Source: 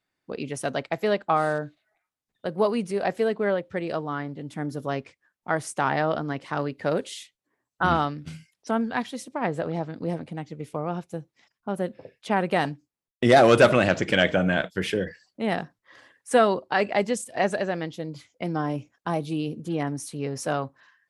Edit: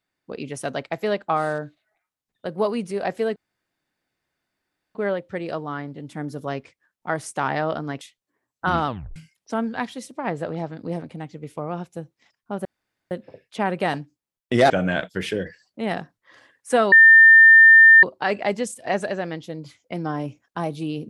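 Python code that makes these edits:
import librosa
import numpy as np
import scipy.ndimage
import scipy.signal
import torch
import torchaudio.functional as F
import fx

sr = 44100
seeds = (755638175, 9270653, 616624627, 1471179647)

y = fx.edit(x, sr, fx.insert_room_tone(at_s=3.36, length_s=1.59),
    fx.cut(start_s=6.42, length_s=0.76),
    fx.tape_stop(start_s=8.04, length_s=0.29),
    fx.insert_room_tone(at_s=11.82, length_s=0.46),
    fx.cut(start_s=13.41, length_s=0.9),
    fx.insert_tone(at_s=16.53, length_s=1.11, hz=1800.0, db=-6.5), tone=tone)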